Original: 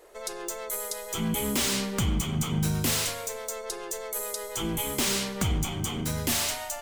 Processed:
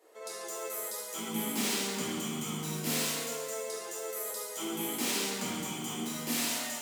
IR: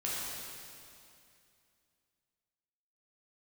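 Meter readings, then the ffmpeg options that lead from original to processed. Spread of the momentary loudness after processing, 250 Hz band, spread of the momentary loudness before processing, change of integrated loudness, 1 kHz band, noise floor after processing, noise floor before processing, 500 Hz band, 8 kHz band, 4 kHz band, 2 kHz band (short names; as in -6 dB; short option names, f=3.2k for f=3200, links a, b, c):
7 LU, -5.0 dB, 9 LU, -5.0 dB, -4.0 dB, -42 dBFS, -39 dBFS, -3.5 dB, -4.0 dB, -4.5 dB, -3.5 dB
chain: -filter_complex "[0:a]highpass=f=190:w=0.5412,highpass=f=190:w=1.3066[a];[1:a]atrim=start_sample=2205,asetrate=79380,aresample=44100[b];[a][b]afir=irnorm=-1:irlink=0,volume=-4dB"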